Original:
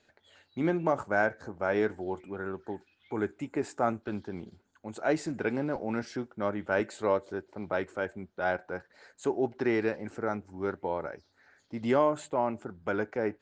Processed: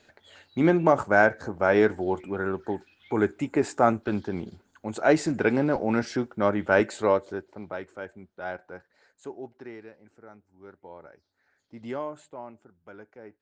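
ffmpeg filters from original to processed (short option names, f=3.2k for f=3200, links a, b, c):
-af "volume=17.5dB,afade=t=out:st=6.77:d=1.01:silence=0.237137,afade=t=out:st=8.68:d=1.18:silence=0.251189,afade=t=in:st=10.56:d=1.24:silence=0.316228,afade=t=out:st=11.8:d=0.91:silence=0.375837"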